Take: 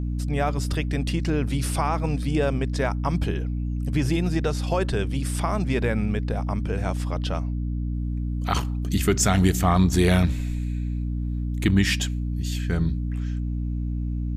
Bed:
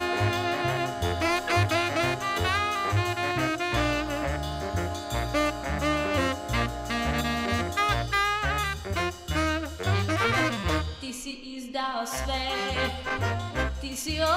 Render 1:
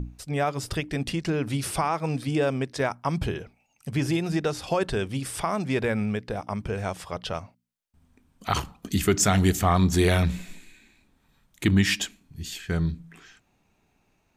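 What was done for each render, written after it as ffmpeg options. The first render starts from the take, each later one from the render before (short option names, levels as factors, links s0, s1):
-af "bandreject=f=60:t=h:w=6,bandreject=f=120:t=h:w=6,bandreject=f=180:t=h:w=6,bandreject=f=240:t=h:w=6,bandreject=f=300:t=h:w=6"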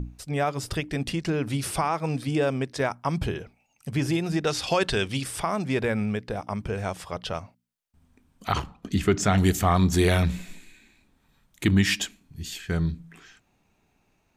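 -filter_complex "[0:a]asettb=1/sr,asplit=3[s0][s1][s2];[s0]atrim=end=4.474[s3];[s1]atrim=start=4.47:end=5.24,asetpts=PTS-STARTPTS,afade=t=in:d=0.004:c=qsin,afade=t=out:st=0.766:d=0.004:c=qsin,equalizer=f=3900:t=o:w=2.7:g=9[s4];[s2]atrim=start=5.236[s5];[s3][s4]acrossfade=d=0.004:c1=hsin:c2=qsin[s6];[s6][s5]acrossfade=d=0.004:c1=qsin:c2=hsin,asettb=1/sr,asplit=3[s7][s8][s9];[s7]atrim=end=8.524[s10];[s8]atrim=start=8.52:end=9.38,asetpts=PTS-STARTPTS,afade=t=in:d=0.004:c=qsin,afade=t=out:st=0.856:d=0.004:c=qsin,aemphasis=mode=reproduction:type=50fm[s11];[s9]atrim=start=9.376[s12];[s10][s11]acrossfade=d=0.004:c1=hsin:c2=qsin[s13];[s13][s12]acrossfade=d=0.004:c1=qsin:c2=hsin"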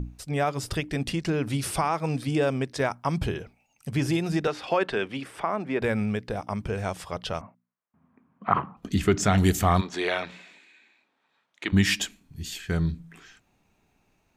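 -filter_complex "[0:a]asettb=1/sr,asplit=3[s0][s1][s2];[s0]atrim=end=4.474[s3];[s1]atrim=start=4.47:end=5.82,asetpts=PTS-STARTPTS,afade=t=in:d=0.004:c=qsin,afade=t=out:st=1.346:d=0.004:c=qsin,acrossover=split=200 2700:gain=0.141 1 0.141[s4][s5][s6];[s4][s5][s6]amix=inputs=3:normalize=0[s7];[s2]atrim=start=5.816[s8];[s3][s7]acrossfade=d=0.004:c1=hsin:c2=qsin[s9];[s9][s8]acrossfade=d=0.004:c1=qsin:c2=hsin,asettb=1/sr,asplit=3[s10][s11][s12];[s10]atrim=end=7.414[s13];[s11]atrim=start=7.41:end=8.77,asetpts=PTS-STARTPTS,afade=t=in:d=0.004:c=qsin,afade=t=out:st=1.356:d=0.004:c=qsin,highpass=f=120:w=0.5412,highpass=f=120:w=1.3066,equalizer=f=200:t=q:w=4:g=6,equalizer=f=660:t=q:w=4:g=3,equalizer=f=1100:t=q:w=4:g=9,lowpass=f=2100:w=0.5412,lowpass=f=2100:w=1.3066[s14];[s12]atrim=start=8.766[s15];[s13][s14]acrossfade=d=0.004:c1=hsin:c2=qsin[s16];[s16][s15]acrossfade=d=0.004:c1=qsin:c2=hsin,asplit=3[s17][s18][s19];[s17]afade=t=out:st=9.8:d=0.02[s20];[s18]highpass=520,lowpass=3700,afade=t=in:st=9.8:d=0.02,afade=t=out:st=11.72:d=0.02[s21];[s19]afade=t=in:st=11.72:d=0.02[s22];[s20][s21][s22]amix=inputs=3:normalize=0"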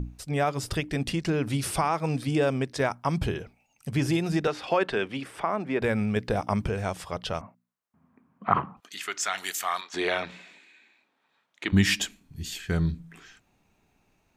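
-filter_complex "[0:a]asettb=1/sr,asplit=3[s0][s1][s2];[s0]atrim=end=8.804[s3];[s1]atrim=start=8.8:end=9.94,asetpts=PTS-STARTPTS,afade=t=in:d=0.004:c=qsin,afade=t=out:st=1.136:d=0.004:c=qsin,highpass=1200[s4];[s2]atrim=start=9.936[s5];[s3][s4]acrossfade=d=0.004:c1=hsin:c2=qsin[s6];[s6][s5]acrossfade=d=0.004:c1=qsin:c2=hsin,asplit=3[s7][s8][s9];[s7]atrim=end=6.162[s10];[s8]atrim=start=6.158:end=6.692,asetpts=PTS-STARTPTS,volume=1.68[s11];[s9]atrim=start=6.688[s12];[s10][s11]acrossfade=d=0.004:c1=hsin:c2=hsin[s13];[s13][s12]acrossfade=d=0.004:c1=hsin:c2=hsin"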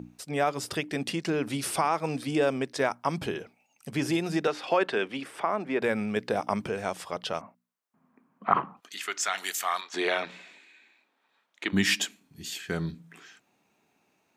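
-af "highpass=220"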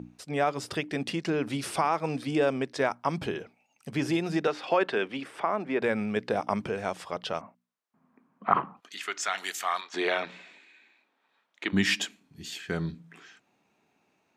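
-af "highshelf=f=8800:g=-12"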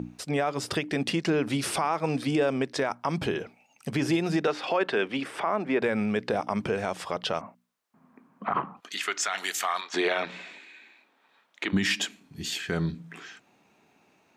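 -filter_complex "[0:a]asplit=2[s0][s1];[s1]acompressor=threshold=0.0178:ratio=6,volume=1.33[s2];[s0][s2]amix=inputs=2:normalize=0,alimiter=limit=0.168:level=0:latency=1:release=36"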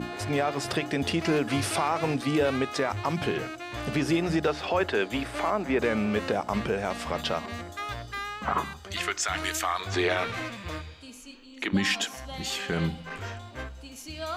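-filter_complex "[1:a]volume=0.316[s0];[0:a][s0]amix=inputs=2:normalize=0"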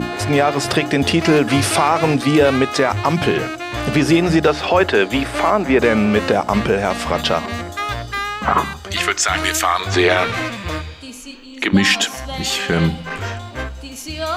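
-af "volume=3.76"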